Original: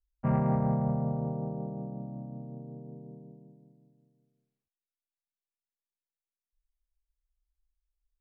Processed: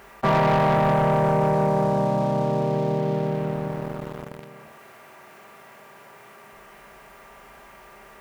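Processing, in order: per-bin compression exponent 0.6; HPF 810 Hz 6 dB/oct; on a send at -1.5 dB: reverb RT60 0.55 s, pre-delay 3 ms; on the sum: sample leveller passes 3; fast leveller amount 50%; gain +7.5 dB

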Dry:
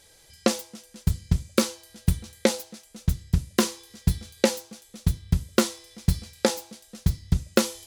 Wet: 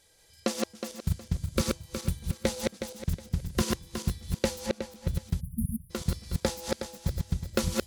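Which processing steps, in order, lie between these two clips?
regenerating reverse delay 0.183 s, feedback 49%, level -2 dB; 4.66–5.15 high shelf 3800 Hz -8 dB; 5.41–5.9 spectral delete 250–9500 Hz; gain -7.5 dB

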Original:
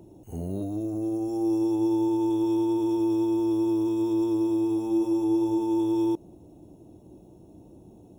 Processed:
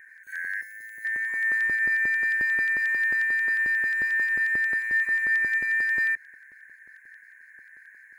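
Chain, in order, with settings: four-band scrambler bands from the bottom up 4123; 0.61–1.05 differentiator; LFO notch square 5.6 Hz 340–4600 Hz

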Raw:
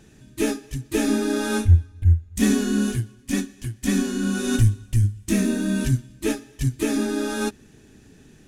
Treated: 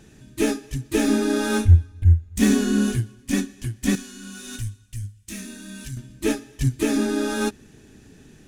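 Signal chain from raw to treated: self-modulated delay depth 0.053 ms; 3.95–5.97 passive tone stack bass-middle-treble 5-5-5; gain +1.5 dB

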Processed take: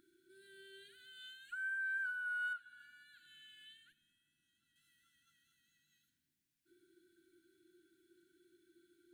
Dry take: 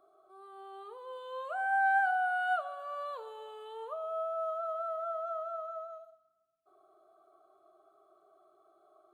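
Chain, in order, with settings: dynamic EQ 2900 Hz, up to -6 dB, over -50 dBFS, Q 0.7; compressor 2.5:1, threshold -43 dBFS, peak gain reduction 12 dB; brick-wall FIR band-stop 370–1400 Hz; 2.53–4.76 high shelf 2100 Hz -8.5 dB; gain +7.5 dB

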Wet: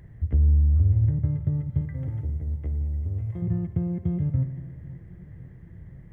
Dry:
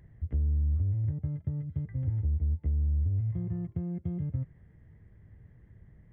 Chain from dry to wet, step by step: 1.81–3.42 tone controls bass -9 dB, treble +4 dB; spring tank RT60 1.6 s, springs 53 ms, chirp 70 ms, DRR 10 dB; warbling echo 0.525 s, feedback 70%, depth 92 cents, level -20 dB; gain +7.5 dB

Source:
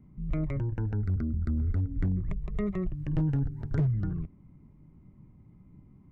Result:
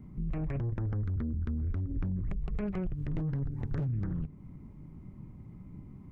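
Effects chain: de-hum 149.8 Hz, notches 3; limiter -29 dBFS, peak gain reduction 10.5 dB; compressor 1.5:1, threshold -45 dBFS, peak gain reduction 5 dB; Doppler distortion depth 0.44 ms; gain +7 dB

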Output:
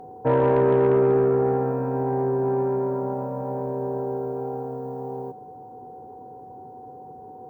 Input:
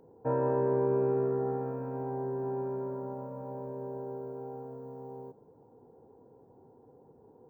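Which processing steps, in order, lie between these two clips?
whine 750 Hz -52 dBFS; added harmonics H 5 -22 dB, 8 -37 dB, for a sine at -18 dBFS; gain +8.5 dB

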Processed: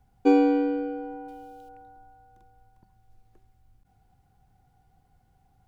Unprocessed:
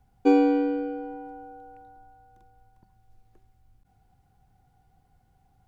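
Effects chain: 1.28–1.69 resonant high shelf 2200 Hz +12.5 dB, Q 1.5

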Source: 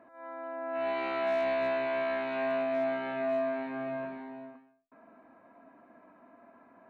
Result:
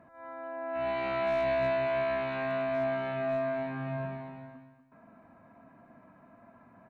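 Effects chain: resonant low shelf 210 Hz +12 dB, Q 1.5; on a send: feedback echo 0.241 s, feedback 20%, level -10.5 dB

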